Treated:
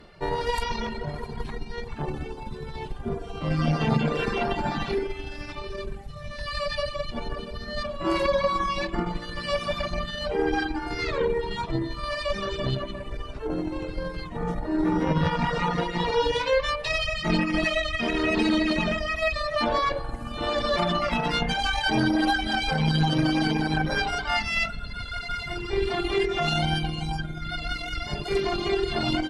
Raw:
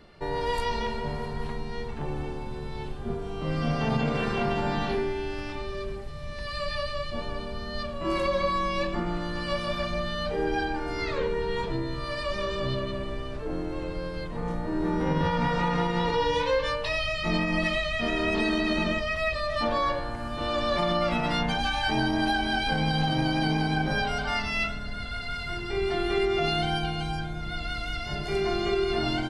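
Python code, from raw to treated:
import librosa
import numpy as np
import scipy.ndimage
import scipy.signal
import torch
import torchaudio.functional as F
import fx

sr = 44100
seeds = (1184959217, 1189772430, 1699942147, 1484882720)

y = fx.cheby_harmonics(x, sr, harmonics=(4,), levels_db=(-19,), full_scale_db=-13.0)
y = fx.rev_spring(y, sr, rt60_s=1.8, pass_ms=(45,), chirp_ms=50, drr_db=9.5)
y = fx.dereverb_blind(y, sr, rt60_s=1.7)
y = y * librosa.db_to_amplitude(3.5)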